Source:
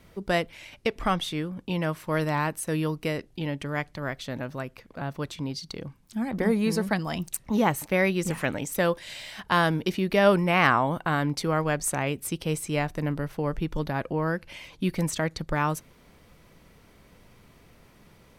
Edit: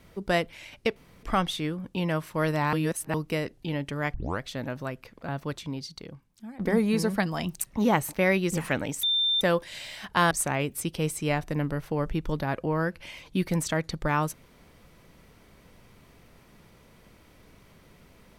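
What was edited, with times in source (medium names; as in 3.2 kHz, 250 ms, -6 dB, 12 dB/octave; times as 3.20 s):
0.96 s: insert room tone 0.27 s
2.46–2.87 s: reverse
3.87 s: tape start 0.27 s
5.13–6.32 s: fade out, to -16 dB
8.76 s: add tone 3.58 kHz -21.5 dBFS 0.38 s
9.66–11.78 s: delete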